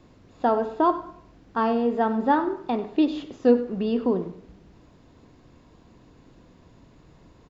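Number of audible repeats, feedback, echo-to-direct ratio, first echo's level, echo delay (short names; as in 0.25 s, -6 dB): 2, 30%, -15.5 dB, -16.0 dB, 95 ms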